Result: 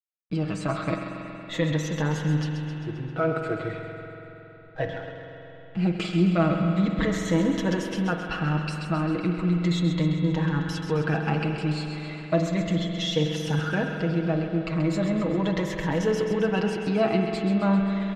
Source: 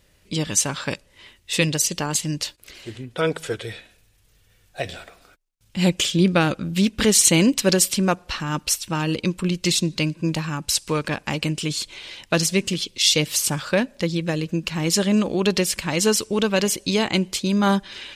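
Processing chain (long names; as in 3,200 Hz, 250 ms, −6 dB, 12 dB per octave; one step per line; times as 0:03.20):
rippled gain that drifts along the octave scale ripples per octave 1.1, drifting −0.36 Hz, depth 10 dB
flat-topped bell 3,800 Hz −8 dB
comb filter 6.3 ms, depth 74%
in parallel at −1 dB: compressor whose output falls as the input rises −23 dBFS
on the sum: tuned comb filter 670 Hz, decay 0.16 s, harmonics all, mix 70%
slack as between gear wheels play −39 dBFS
high-frequency loss of the air 220 metres
on a send: delay with a high-pass on its return 132 ms, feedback 60%, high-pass 1,400 Hz, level −8 dB
on the sum: spring reverb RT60 3.6 s, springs 46 ms, chirp 55 ms, DRR 4 dB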